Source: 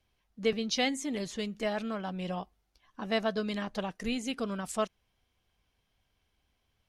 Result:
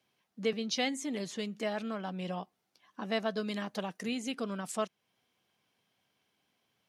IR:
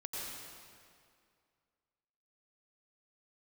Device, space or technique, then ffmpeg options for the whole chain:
parallel compression: -filter_complex "[0:a]highpass=f=140:w=0.5412,highpass=f=140:w=1.3066,asplit=2[a][b];[b]acompressor=threshold=-42dB:ratio=6,volume=-0.5dB[c];[a][c]amix=inputs=2:normalize=0,asettb=1/sr,asplit=3[d][e][f];[d]atrim=end=3.344[g];[e]atrim=start=3.34:end=4.02,asetpts=PTS-STARTPTS,afade=t=in:d=0.004:c=qsin,afade=t=out:st=0.676:d=0.004:c=qsin,highshelf=f=8.8k:g=7.5[h];[f]atrim=start=4.016[i];[g][h]acrossfade=d=0.004:c1=hsin:c2=qsin[j];[j][i]acrossfade=d=0.004:c1=qsin:c2=hsin,volume=-4dB"

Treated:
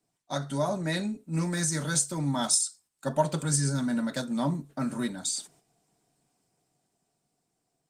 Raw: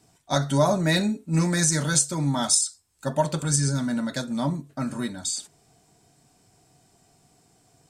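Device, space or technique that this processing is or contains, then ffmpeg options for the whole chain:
video call: -af "highpass=f=130:w=0.5412,highpass=f=130:w=1.3066,dynaudnorm=f=230:g=17:m=10.5dB,agate=range=-9dB:threshold=-47dB:ratio=16:detection=peak,volume=-7.5dB" -ar 48000 -c:a libopus -b:a 24k

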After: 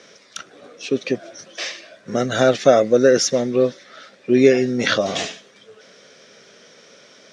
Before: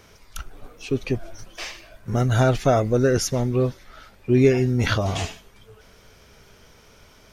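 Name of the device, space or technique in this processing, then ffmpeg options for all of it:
television speaker: -af "highpass=f=180:w=0.5412,highpass=f=180:w=1.3066,equalizer=f=540:t=q:w=4:g=8,equalizer=f=910:t=q:w=4:g=-8,equalizer=f=1.8k:t=q:w=4:g=5,equalizer=f=3.7k:t=q:w=4:g=6,equalizer=f=5.6k:t=q:w=4:g=5,lowpass=f=8k:w=0.5412,lowpass=f=8k:w=1.3066,volume=3dB"

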